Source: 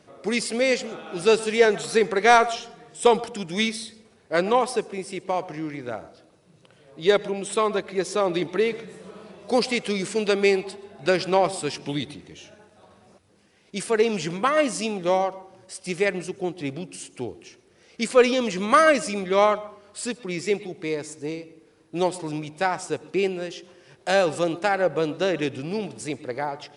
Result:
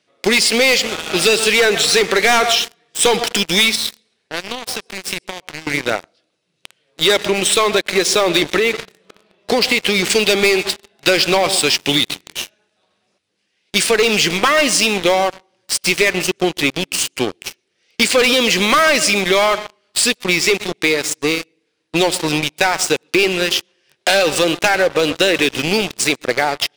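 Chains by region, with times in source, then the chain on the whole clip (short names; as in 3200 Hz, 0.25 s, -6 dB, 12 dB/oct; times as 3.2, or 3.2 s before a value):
3.75–5.67 compressor 5:1, threshold -36 dBFS + thin delay 0.134 s, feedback 32%, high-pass 1700 Hz, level -16 dB
8.57–10.1 high shelf 3800 Hz -10 dB + compressor, threshold -23 dBFS
whole clip: weighting filter D; sample leveller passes 5; compressor, threshold -8 dBFS; gain -3.5 dB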